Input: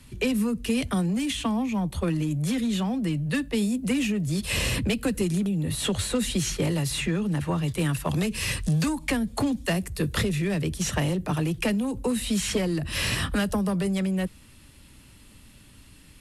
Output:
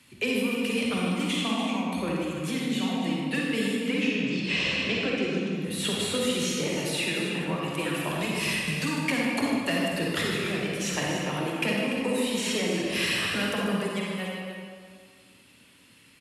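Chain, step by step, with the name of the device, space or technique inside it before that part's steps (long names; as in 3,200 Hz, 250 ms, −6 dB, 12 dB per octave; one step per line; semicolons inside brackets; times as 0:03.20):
0:03.84–0:05.55: low-pass filter 5,800 Hz 24 dB per octave
reverb reduction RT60 1.4 s
stadium PA (high-pass filter 190 Hz 12 dB per octave; parametric band 2,500 Hz +6 dB 1 octave; loudspeakers that aren't time-aligned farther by 52 metres −10 dB, 100 metres −9 dB; convolution reverb RT60 2.0 s, pre-delay 40 ms, DRR −3 dB)
level −5 dB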